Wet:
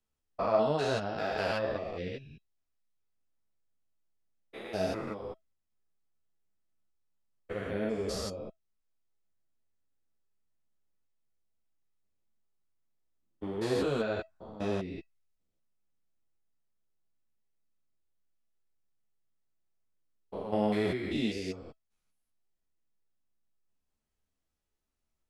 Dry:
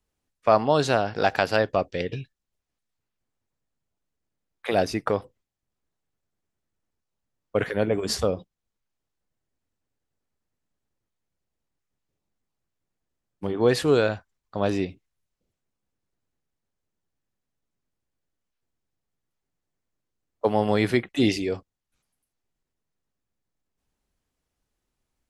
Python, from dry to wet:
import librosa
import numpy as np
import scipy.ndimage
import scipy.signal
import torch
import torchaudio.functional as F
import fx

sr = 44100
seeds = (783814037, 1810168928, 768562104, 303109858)

y = fx.spec_steps(x, sr, hold_ms=200)
y = fx.comb_fb(y, sr, f0_hz=650.0, decay_s=0.15, harmonics='all', damping=0.0, mix_pct=60)
y = fx.ensemble(y, sr)
y = y * librosa.db_to_amplitude(4.5)